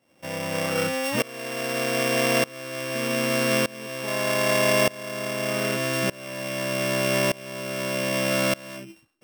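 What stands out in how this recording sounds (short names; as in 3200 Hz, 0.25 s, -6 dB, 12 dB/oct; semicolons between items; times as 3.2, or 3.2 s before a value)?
a buzz of ramps at a fixed pitch in blocks of 16 samples; tremolo saw up 0.82 Hz, depth 95%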